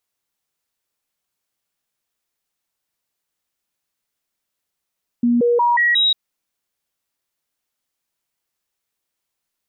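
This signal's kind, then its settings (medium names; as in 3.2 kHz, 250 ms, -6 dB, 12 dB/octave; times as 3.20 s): stepped sine 239 Hz up, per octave 1, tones 5, 0.18 s, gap 0.00 s -12.5 dBFS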